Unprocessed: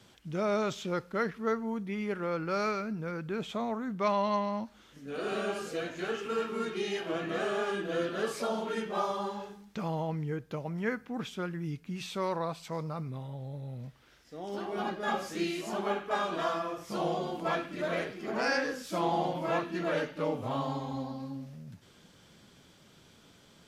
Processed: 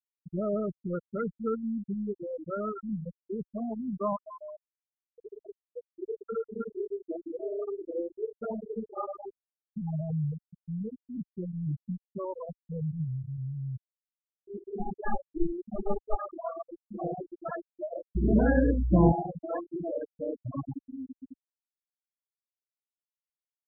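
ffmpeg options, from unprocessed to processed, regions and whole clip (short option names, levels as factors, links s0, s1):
-filter_complex "[0:a]asettb=1/sr,asplit=3[s0][s1][s2];[s0]atrim=end=4.164[s3];[s1]atrim=start=4.16:end=5.97,asetpts=PTS-STARTPTS,afade=t=in:d=0.004:c=qsin,afade=t=out:st=1.806:d=0.004:c=qsin,highpass=460,lowpass=7900,aeval=exprs='(mod(20*val(0)+1,2)-1)/20':c=same[s4];[s2]atrim=start=5.966[s5];[s3][s4]acrossfade=d=0.004:c1=hsin:c2=qsin[s6];[s6][s5]acrossfade=d=0.004:c1=qsin:c2=hsin,asettb=1/sr,asplit=3[s7][s8][s9];[s7]atrim=end=10.244[s10];[s8]atrim=start=10.24:end=11.16,asetpts=PTS-STARTPTS,afade=t=in:d=0.004:c=qsin,afade=t=out:st=0.916:d=0.004:c=qsin,equalizer=f=67:t=o:w=2:g=8,acompressor=threshold=0.01:ratio=1.5:attack=3.2:release=140:knee=1:detection=peak[s11];[s9]atrim=start=11.156[s12];[s10][s11]acrossfade=d=0.004:c1=hsin:c2=qsin[s13];[s13][s12]acrossfade=d=0.004:c1=qsin:c2=hsin,asettb=1/sr,asplit=3[s14][s15][s16];[s14]atrim=end=12.554[s17];[s15]atrim=start=12.55:end=16.15,asetpts=PTS-STARTPTS,afade=t=in:d=0.004:c=qsin,afade=t=out:st=3.596:d=0.004:c=qsin,acontrast=48,aeval=exprs='(tanh(10*val(0)+0.75)-tanh(0.75))/10':c=same[s18];[s16]atrim=start=16.146[s19];[s17][s18]acrossfade=d=0.004:c1=hsin:c2=qsin[s20];[s20][s19]acrossfade=d=0.004:c1=qsin:c2=hsin,asettb=1/sr,asplit=3[s21][s22][s23];[s21]atrim=end=18.154[s24];[s22]atrim=start=18.15:end=19.12,asetpts=PTS-STARTPTS,afade=t=in:d=0.004:c=qsin,afade=t=out:st=0.966:d=0.004:c=qsin,equalizer=f=160:w=0.4:g=13.5,aeval=exprs='val(0)+0.0178*(sin(2*PI*60*n/s)+sin(2*PI*2*60*n/s)/2+sin(2*PI*3*60*n/s)/3+sin(2*PI*4*60*n/s)/4+sin(2*PI*5*60*n/s)/5)':c=same[s25];[s23]atrim=start=19.116[s26];[s24][s25]acrossfade=d=0.004:c1=hsin:c2=qsin[s27];[s27][s26]acrossfade=d=0.004:c1=qsin:c2=hsin,afftfilt=real='re*gte(hypot(re,im),0.141)':imag='im*gte(hypot(re,im),0.141)':win_size=1024:overlap=0.75,aemphasis=mode=reproduction:type=bsi,volume=0.841"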